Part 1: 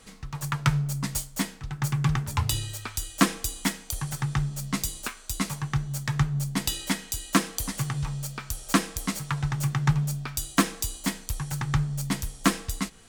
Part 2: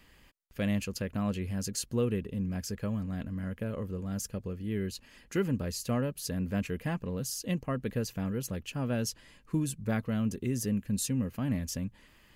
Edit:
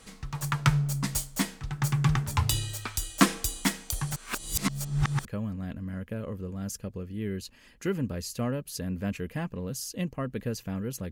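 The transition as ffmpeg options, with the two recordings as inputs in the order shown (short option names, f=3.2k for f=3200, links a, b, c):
-filter_complex "[0:a]apad=whole_dur=11.11,atrim=end=11.11,asplit=2[a][b];[a]atrim=end=4.162[c];[b]atrim=start=4.158:end=5.252,asetpts=PTS-STARTPTS,areverse[d];[1:a]atrim=start=2.748:end=8.61[e];[c][d]acrossfade=d=0.004:c1=hsin:c2=hsin[f];[f][e]acrossfade=d=0.004:c1=hsin:c2=hsin"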